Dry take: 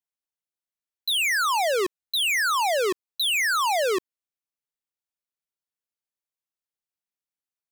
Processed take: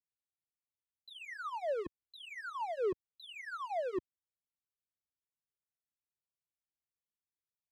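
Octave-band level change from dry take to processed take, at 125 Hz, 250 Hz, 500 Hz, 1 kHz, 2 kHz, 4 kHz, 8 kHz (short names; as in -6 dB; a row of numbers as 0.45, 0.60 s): n/a, -10.0 dB, -11.0 dB, -16.0 dB, -22.0 dB, -27.5 dB, under -35 dB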